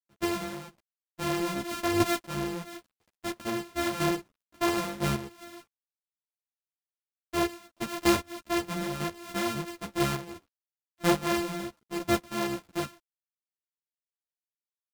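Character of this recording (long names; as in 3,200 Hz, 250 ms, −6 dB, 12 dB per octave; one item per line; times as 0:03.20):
a buzz of ramps at a fixed pitch in blocks of 128 samples
chopped level 1 Hz, depth 60%, duty 15%
a quantiser's noise floor 12 bits, dither none
a shimmering, thickened sound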